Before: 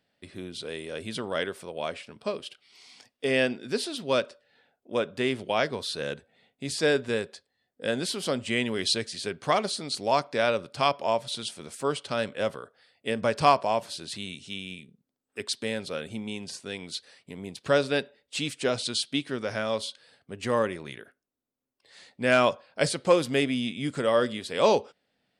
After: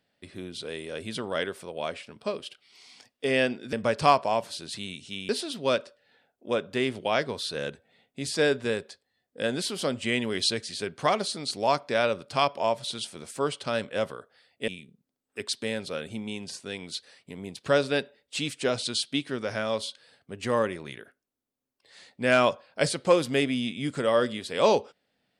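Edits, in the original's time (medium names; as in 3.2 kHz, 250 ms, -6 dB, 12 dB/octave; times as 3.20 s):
13.12–14.68 s: move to 3.73 s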